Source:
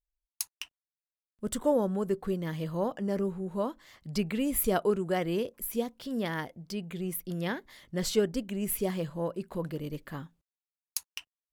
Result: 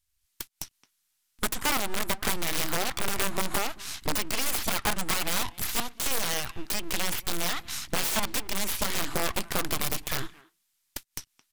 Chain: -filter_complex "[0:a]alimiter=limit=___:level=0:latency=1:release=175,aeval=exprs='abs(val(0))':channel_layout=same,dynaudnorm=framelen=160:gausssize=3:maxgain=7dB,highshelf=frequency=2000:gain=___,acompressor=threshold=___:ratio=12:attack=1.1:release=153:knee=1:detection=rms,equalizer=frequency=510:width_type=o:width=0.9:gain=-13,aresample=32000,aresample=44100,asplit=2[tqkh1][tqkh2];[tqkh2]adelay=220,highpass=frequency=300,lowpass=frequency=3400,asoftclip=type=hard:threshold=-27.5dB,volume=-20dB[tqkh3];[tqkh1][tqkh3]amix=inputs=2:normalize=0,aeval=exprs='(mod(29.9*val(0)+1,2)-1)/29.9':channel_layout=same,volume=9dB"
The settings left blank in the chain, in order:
-14.5dB, 9, -28dB